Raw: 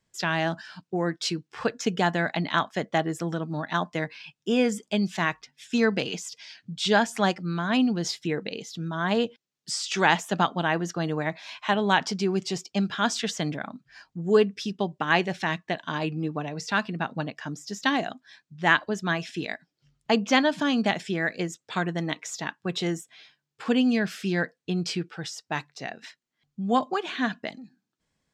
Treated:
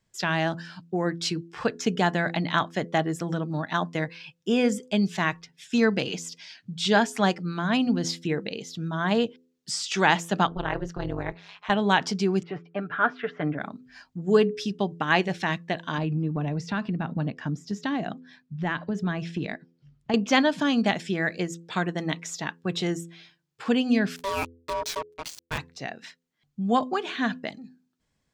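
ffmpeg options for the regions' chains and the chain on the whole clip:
-filter_complex "[0:a]asettb=1/sr,asplit=3[s0][s1][s2];[s0]atrim=end=10.474[s3];[s1]atrim=start=10.47:end=11.7,asetpts=PTS-STARTPTS,afade=t=in:d=0.004:c=qsin,afade=t=out:st=1.226:d=0.004:c=qsin,aemphasis=mode=reproduction:type=50kf,tremolo=f=200:d=0.974[s4];[s2]atrim=start=11.696[s5];[s3][s4]acrossfade=d=0.004:c1=hsin:c2=qsin[s6];[s6][s5]acrossfade=d=0.004:c1=qsin:c2=hsin,asettb=1/sr,asplit=3[s7][s8][s9];[s7]atrim=end=12.434[s10];[s8]atrim=start=12.43:end=13.59,asetpts=PTS-STARTPTS,afade=t=in:d=0.004:c=qsin,afade=t=out:st=1.156:d=0.004:c=qsin,highpass=160,equalizer=f=200:t=q:w=4:g=-9,equalizer=f=900:t=q:w=4:g=-3,equalizer=f=1400:t=q:w=4:g=7,lowpass=f=2100:w=0.5412,lowpass=f=2100:w=1.3066,aecho=1:1:6.8:0.47,atrim=end_sample=51156[s11];[s9]atrim=start=13.586[s12];[s10][s11]acrossfade=d=0.004:c1=hsin:c2=qsin[s13];[s13][s12]acrossfade=d=0.004:c1=qsin:c2=hsin,asettb=1/sr,asplit=3[s14][s15][s16];[s14]atrim=end=15.984[s17];[s15]atrim=start=15.98:end=20.14,asetpts=PTS-STARTPTS,afade=t=in:d=0.004:c=qsin,afade=t=out:st=4.156:d=0.004:c=qsin,lowpass=f=2900:p=1,equalizer=f=160:w=0.7:g=7.5,acompressor=threshold=0.0501:ratio=3:attack=3.2:release=140:knee=1:detection=peak[s18];[s16]atrim=start=20.136[s19];[s17][s18]acrossfade=d=0.004:c1=hsin:c2=qsin[s20];[s20][s19]acrossfade=d=0.004:c1=qsin:c2=hsin,asettb=1/sr,asplit=3[s21][s22][s23];[s21]atrim=end=24.164[s24];[s22]atrim=start=24.16:end=25.58,asetpts=PTS-STARTPTS,afade=t=in:d=0.004:c=qsin,afade=t=out:st=1.416:d=0.004:c=qsin,highshelf=f=4100:g=3.5,acrusher=bits=4:mix=0:aa=0.5,aeval=exprs='val(0)*sin(2*PI*780*n/s)':c=same[s25];[s23]atrim=start=25.576[s26];[s24][s25]acrossfade=d=0.004:c1=hsin:c2=qsin[s27];[s27][s26]acrossfade=d=0.004:c1=qsin:c2=hsin,lowshelf=f=170:g=5,bandreject=f=84.29:t=h:w=4,bandreject=f=168.58:t=h:w=4,bandreject=f=252.87:t=h:w=4,bandreject=f=337.16:t=h:w=4,bandreject=f=421.45:t=h:w=4,bandreject=f=505.74:t=h:w=4"

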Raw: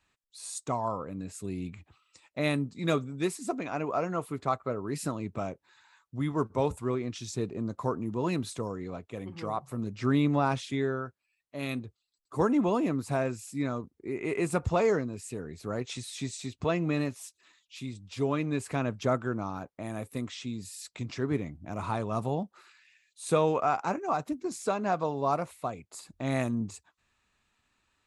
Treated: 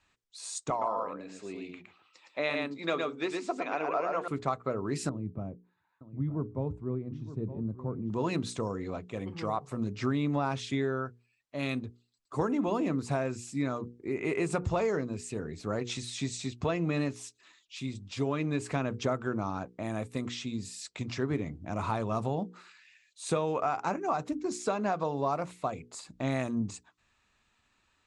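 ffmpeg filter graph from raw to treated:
-filter_complex "[0:a]asettb=1/sr,asplit=3[s0][s1][s2];[s0]atrim=end=0.704[s3];[s1]atrim=start=0.7:end=4.28,asetpts=PTS-STARTPTS,afade=t=in:d=0.004:c=qsin,afade=t=out:st=3.576:d=0.004:c=qsin,highpass=400,lowpass=4300,aecho=1:1:113:0.631,atrim=end_sample=157878[s4];[s2]atrim=start=4.276[s5];[s3][s4]acrossfade=d=0.004:c1=hsin:c2=qsin[s6];[s6][s5]acrossfade=d=0.004:c1=qsin:c2=hsin,asettb=1/sr,asplit=3[s7][s8][s9];[s7]atrim=end=5.094[s10];[s8]atrim=start=5.09:end=8.1,asetpts=PTS-STARTPTS,afade=t=in:d=0.004:c=qsin,afade=t=out:st=3.006:d=0.004:c=qsin,bandpass=f=120:t=q:w=0.74,aecho=1:1:918:0.211,atrim=end_sample=132741[s11];[s9]atrim=start=8.096[s12];[s10][s11]acrossfade=d=0.004:c1=hsin:c2=qsin[s13];[s13][s12]acrossfade=d=0.004:c1=qsin:c2=hsin,lowpass=f=8300:w=0.5412,lowpass=f=8300:w=1.3066,bandreject=f=60:t=h:w=6,bandreject=f=120:t=h:w=6,bandreject=f=180:t=h:w=6,bandreject=f=240:t=h:w=6,bandreject=f=300:t=h:w=6,bandreject=f=360:t=h:w=6,bandreject=f=420:t=h:w=6,bandreject=f=480:t=h:w=6,acompressor=threshold=0.0398:ratio=6,volume=1.33"

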